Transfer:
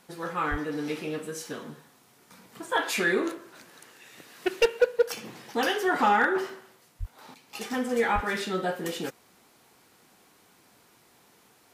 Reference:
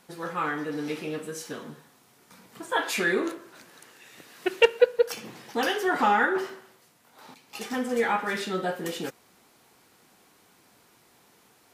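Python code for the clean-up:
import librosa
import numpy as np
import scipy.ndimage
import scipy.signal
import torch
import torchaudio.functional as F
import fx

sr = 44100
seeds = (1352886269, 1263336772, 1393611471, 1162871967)

y = fx.fix_declip(x, sr, threshold_db=-14.0)
y = fx.fix_deplosive(y, sr, at_s=(0.5, 6.99, 8.14))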